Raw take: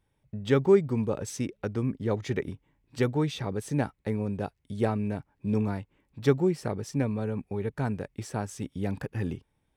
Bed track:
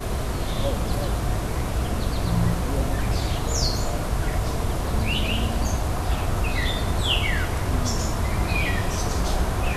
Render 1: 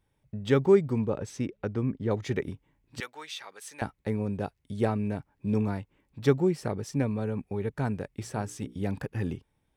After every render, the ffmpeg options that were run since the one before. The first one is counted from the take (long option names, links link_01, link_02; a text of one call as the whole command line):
ffmpeg -i in.wav -filter_complex "[0:a]asettb=1/sr,asplit=3[link_01][link_02][link_03];[link_01]atrim=end=0.984[link_04];[link_02]atrim=start=0.98:end=2.11,asetpts=PTS-STARTPTS,afade=type=in:duration=0.004:curve=qsin,afade=type=out:start_time=1.126:duration=0.004:curve=qsin,lowpass=frequency=3000:poles=1[link_05];[link_03]atrim=start=2.106[link_06];[link_04][link_05]acrossfade=duration=0.004:curve1=hsin:curve2=qsin[link_07];[link_07][link_06]acrossfade=duration=0.004:curve1=qsin:curve2=hsin,asettb=1/sr,asplit=3[link_08][link_09][link_10];[link_08]atrim=end=3.004[link_11];[link_09]atrim=start=3:end=3.82,asetpts=PTS-STARTPTS,afade=type=in:duration=0.004:curve=qsin,afade=type=out:start_time=0.816:duration=0.004:curve=qsin,highpass=1300[link_12];[link_10]atrim=start=3.816[link_13];[link_11][link_12]acrossfade=duration=0.004:curve1=hsin:curve2=qsin[link_14];[link_14][link_13]acrossfade=duration=0.004:curve1=qsin:curve2=hsin,asettb=1/sr,asplit=3[link_15][link_16][link_17];[link_15]atrim=end=8.214[link_18];[link_16]atrim=start=8.21:end=8.82,asetpts=PTS-STARTPTS,afade=type=in:duration=0.004:curve=qsin,afade=type=out:start_time=0.606:duration=0.004:curve=qsin,bandreject=frequency=60:width_type=h:width=6,bandreject=frequency=120:width_type=h:width=6,bandreject=frequency=180:width_type=h:width=6,bandreject=frequency=240:width_type=h:width=6,bandreject=frequency=300:width_type=h:width=6,bandreject=frequency=360:width_type=h:width=6,bandreject=frequency=420:width_type=h:width=6,bandreject=frequency=480:width_type=h:width=6[link_19];[link_17]atrim=start=8.816[link_20];[link_18][link_19]acrossfade=duration=0.004:curve1=hsin:curve2=qsin[link_21];[link_21][link_20]acrossfade=duration=0.004:curve1=qsin:curve2=hsin" out.wav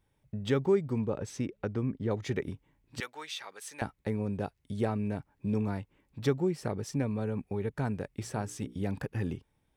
ffmpeg -i in.wav -af "acompressor=threshold=-32dB:ratio=1.5" out.wav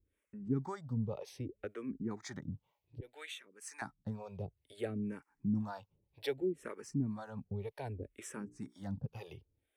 ffmpeg -i in.wav -filter_complex "[0:a]acrossover=split=430[link_01][link_02];[link_01]aeval=exprs='val(0)*(1-1/2+1/2*cos(2*PI*2*n/s))':channel_layout=same[link_03];[link_02]aeval=exprs='val(0)*(1-1/2-1/2*cos(2*PI*2*n/s))':channel_layout=same[link_04];[link_03][link_04]amix=inputs=2:normalize=0,asplit=2[link_05][link_06];[link_06]afreqshift=-0.62[link_07];[link_05][link_07]amix=inputs=2:normalize=1" out.wav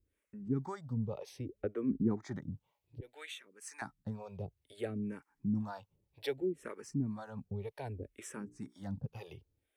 ffmpeg -i in.wav -filter_complex "[0:a]asplit=3[link_01][link_02][link_03];[link_01]afade=type=out:start_time=1.61:duration=0.02[link_04];[link_02]tiltshelf=frequency=1200:gain=9,afade=type=in:start_time=1.61:duration=0.02,afade=type=out:start_time=2.36:duration=0.02[link_05];[link_03]afade=type=in:start_time=2.36:duration=0.02[link_06];[link_04][link_05][link_06]amix=inputs=3:normalize=0" out.wav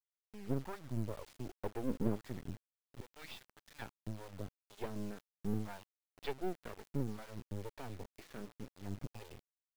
ffmpeg -i in.wav -af "aresample=11025,aeval=exprs='max(val(0),0)':channel_layout=same,aresample=44100,acrusher=bits=8:mix=0:aa=0.000001" out.wav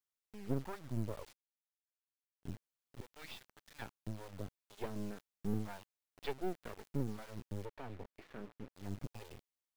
ffmpeg -i in.wav -filter_complex "[0:a]asettb=1/sr,asplit=3[link_01][link_02][link_03];[link_01]atrim=end=7.654[link_04];[link_02]atrim=start=7.65:end=8.75,asetpts=PTS-STARTPTS,afade=type=in:duration=0.004:curve=qsin,afade=type=out:start_time=1.096:duration=0.004:curve=qsin,bass=frequency=250:gain=-2,treble=frequency=4000:gain=-13[link_05];[link_03]atrim=start=8.746[link_06];[link_04][link_05]acrossfade=duration=0.004:curve1=hsin:curve2=qsin[link_07];[link_07][link_06]acrossfade=duration=0.004:curve1=qsin:curve2=hsin,asplit=3[link_08][link_09][link_10];[link_08]atrim=end=1.33,asetpts=PTS-STARTPTS,afade=type=out:start_time=1.326:duration=0.004:curve=hsin[link_11];[link_09]atrim=start=1.33:end=2.43,asetpts=PTS-STARTPTS,volume=0[link_12];[link_10]atrim=start=2.43,asetpts=PTS-STARTPTS,afade=type=in:duration=0.004:curve=hsin[link_13];[link_11][link_12][link_13]concat=n=3:v=0:a=1" out.wav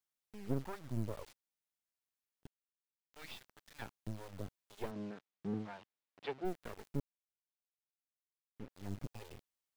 ffmpeg -i in.wav -filter_complex "[0:a]asplit=3[link_01][link_02][link_03];[link_01]afade=type=out:start_time=4.9:duration=0.02[link_04];[link_02]highpass=140,lowpass=3800,afade=type=in:start_time=4.9:duration=0.02,afade=type=out:start_time=6.44:duration=0.02[link_05];[link_03]afade=type=in:start_time=6.44:duration=0.02[link_06];[link_04][link_05][link_06]amix=inputs=3:normalize=0,asplit=5[link_07][link_08][link_09][link_10][link_11];[link_07]atrim=end=2.47,asetpts=PTS-STARTPTS,afade=type=out:start_time=2.466:duration=0.004:curve=hsin[link_12];[link_08]atrim=start=2.47:end=3.14,asetpts=PTS-STARTPTS,volume=0[link_13];[link_09]atrim=start=3.14:end=7,asetpts=PTS-STARTPTS,afade=type=in:duration=0.004:curve=hsin,afade=type=out:start_time=3.856:duration=0.004:curve=hsin[link_14];[link_10]atrim=start=7:end=8.56,asetpts=PTS-STARTPTS,volume=0[link_15];[link_11]atrim=start=8.56,asetpts=PTS-STARTPTS,afade=type=in:duration=0.004:curve=hsin[link_16];[link_12][link_13][link_14][link_15][link_16]concat=n=5:v=0:a=1" out.wav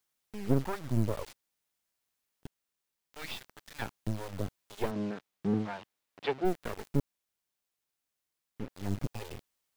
ffmpeg -i in.wav -af "volume=9.5dB" out.wav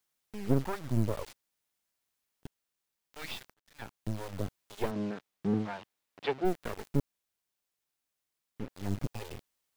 ffmpeg -i in.wav -filter_complex "[0:a]asplit=2[link_01][link_02];[link_01]atrim=end=3.54,asetpts=PTS-STARTPTS,afade=type=out:start_time=3.536:duration=0.004:curve=hsin[link_03];[link_02]atrim=start=3.54,asetpts=PTS-STARTPTS,afade=type=in:duration=0.66[link_04];[link_03][link_04]concat=n=2:v=0:a=1" out.wav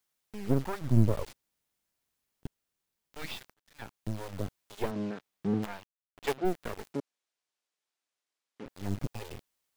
ffmpeg -i in.wav -filter_complex "[0:a]asettb=1/sr,asplit=3[link_01][link_02][link_03];[link_01]atrim=end=0.814[link_04];[link_02]atrim=start=0.81:end=3.28,asetpts=PTS-STARTPTS,afade=type=in:duration=0.004:curve=qsin,afade=type=out:start_time=2.466:duration=0.004:curve=qsin,lowshelf=frequency=400:gain=7[link_05];[link_03]atrim=start=3.276[link_06];[link_04][link_05]acrossfade=duration=0.004:curve1=hsin:curve2=qsin[link_07];[link_07][link_06]acrossfade=duration=0.004:curve1=qsin:curve2=hsin,asplit=3[link_08][link_09][link_10];[link_08]afade=type=out:start_time=5.62:duration=0.02[link_11];[link_09]acrusher=bits=6:dc=4:mix=0:aa=0.000001,afade=type=in:start_time=5.62:duration=0.02,afade=type=out:start_time=6.36:duration=0.02[link_12];[link_10]afade=type=in:start_time=6.36:duration=0.02[link_13];[link_11][link_12][link_13]amix=inputs=3:normalize=0,asettb=1/sr,asplit=3[link_14][link_15][link_16];[link_14]atrim=end=6.934[link_17];[link_15]atrim=start=6.93:end=8.66,asetpts=PTS-STARTPTS,afade=type=in:duration=0.004:curve=qsin,afade=type=out:start_time=1.726:duration=0.004:curve=qsin,highpass=300,lowpass=7600[link_18];[link_16]atrim=start=8.656[link_19];[link_17][link_18]acrossfade=duration=0.004:curve1=hsin:curve2=qsin[link_20];[link_20][link_19]acrossfade=duration=0.004:curve1=qsin:curve2=hsin" out.wav